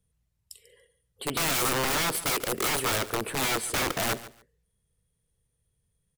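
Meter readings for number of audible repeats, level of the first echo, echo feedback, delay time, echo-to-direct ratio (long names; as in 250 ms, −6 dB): 2, −16.5 dB, 19%, 143 ms, −16.5 dB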